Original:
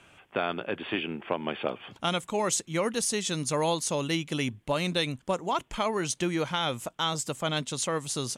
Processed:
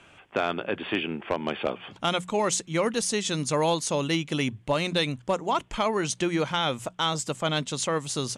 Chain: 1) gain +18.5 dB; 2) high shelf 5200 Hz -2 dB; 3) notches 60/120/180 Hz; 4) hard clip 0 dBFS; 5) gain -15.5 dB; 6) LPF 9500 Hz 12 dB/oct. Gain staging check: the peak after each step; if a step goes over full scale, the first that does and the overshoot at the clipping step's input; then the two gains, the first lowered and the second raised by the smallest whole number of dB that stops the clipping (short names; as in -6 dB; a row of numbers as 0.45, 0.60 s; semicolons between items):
+6.0, +6.0, +6.0, 0.0, -15.5, -15.0 dBFS; step 1, 6.0 dB; step 1 +12.5 dB, step 5 -9.5 dB